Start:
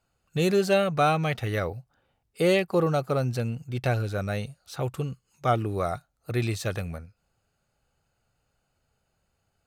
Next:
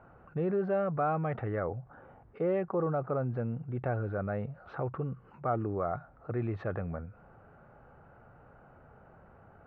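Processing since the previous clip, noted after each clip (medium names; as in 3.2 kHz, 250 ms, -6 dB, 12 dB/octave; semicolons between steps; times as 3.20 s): low-pass 1.5 kHz 24 dB/octave; bass shelf 83 Hz -11 dB; level flattener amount 50%; trim -8 dB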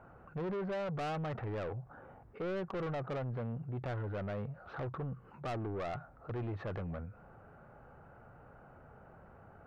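saturation -34.5 dBFS, distortion -8 dB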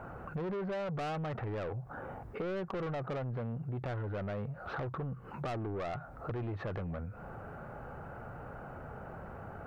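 compression 5:1, threshold -48 dBFS, peak gain reduction 10.5 dB; trim +11 dB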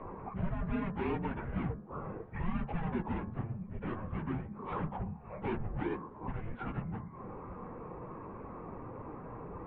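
phase randomisation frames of 50 ms; mistuned SSB -350 Hz 190–3200 Hz; de-hum 72.75 Hz, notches 25; trim +3.5 dB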